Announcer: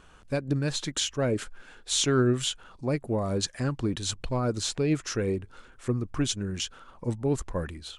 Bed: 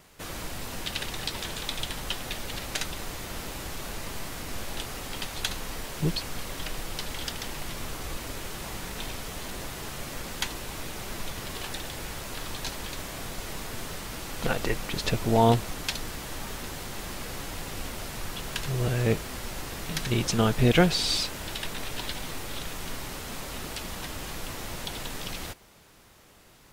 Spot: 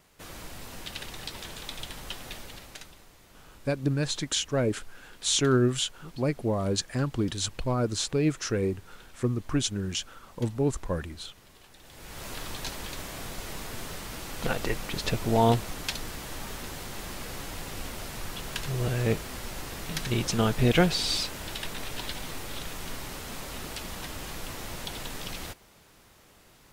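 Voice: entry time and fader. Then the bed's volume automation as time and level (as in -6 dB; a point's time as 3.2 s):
3.35 s, +0.5 dB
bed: 2.36 s -6 dB
3.09 s -19 dB
11.75 s -19 dB
12.25 s -1.5 dB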